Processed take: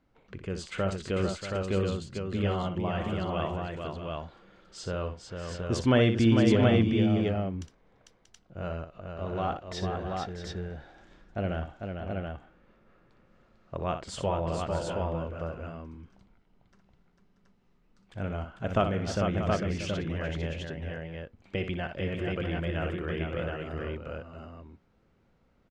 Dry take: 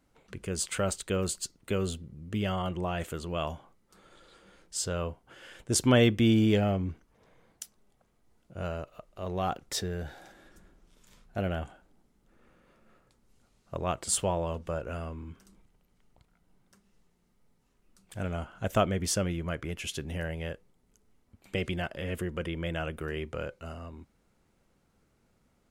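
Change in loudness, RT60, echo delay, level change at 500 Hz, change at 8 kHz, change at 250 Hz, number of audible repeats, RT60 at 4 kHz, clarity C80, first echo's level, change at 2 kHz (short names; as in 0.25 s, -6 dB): +0.5 dB, none, 61 ms, +2.5 dB, -12.5 dB, +2.5 dB, 4, none, none, -9.0 dB, +1.0 dB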